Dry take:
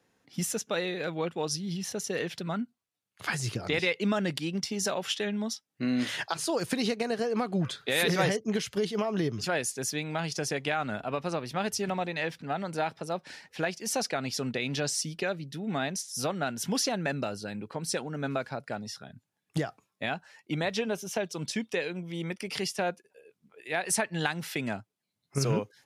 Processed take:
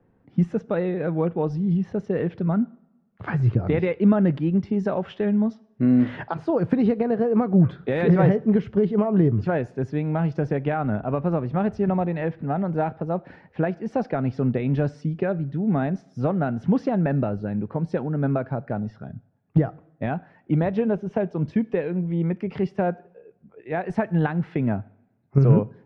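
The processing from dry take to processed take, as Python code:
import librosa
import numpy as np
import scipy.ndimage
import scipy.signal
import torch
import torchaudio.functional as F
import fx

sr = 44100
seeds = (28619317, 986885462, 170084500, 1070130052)

y = scipy.signal.sosfilt(scipy.signal.butter(2, 1700.0, 'lowpass', fs=sr, output='sos'), x)
y = fx.tilt_eq(y, sr, slope=-3.5)
y = fx.rev_double_slope(y, sr, seeds[0], early_s=0.61, late_s=1.6, knee_db=-17, drr_db=19.0)
y = F.gain(torch.from_numpy(y), 3.5).numpy()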